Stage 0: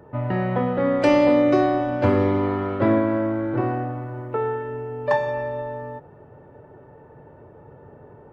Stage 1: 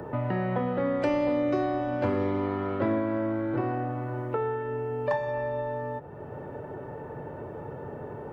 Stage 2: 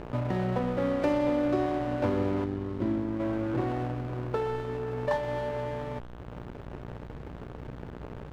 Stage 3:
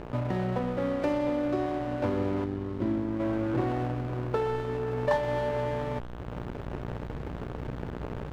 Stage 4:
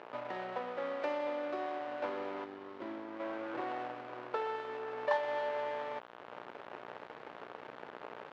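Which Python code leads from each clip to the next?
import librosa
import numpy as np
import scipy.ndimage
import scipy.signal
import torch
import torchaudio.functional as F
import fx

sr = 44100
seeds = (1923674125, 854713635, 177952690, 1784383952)

y1 = fx.band_squash(x, sr, depth_pct=70)
y1 = y1 * librosa.db_to_amplitude(-6.5)
y2 = fx.dmg_buzz(y1, sr, base_hz=60.0, harmonics=28, level_db=-43.0, tilt_db=-3, odd_only=False)
y2 = fx.spec_box(y2, sr, start_s=2.44, length_s=0.76, low_hz=400.0, high_hz=2800.0, gain_db=-10)
y2 = fx.backlash(y2, sr, play_db=-30.0)
y3 = fx.rider(y2, sr, range_db=5, speed_s=2.0)
y4 = fx.bandpass_edges(y3, sr, low_hz=630.0, high_hz=4200.0)
y4 = y4 * librosa.db_to_amplitude(-2.5)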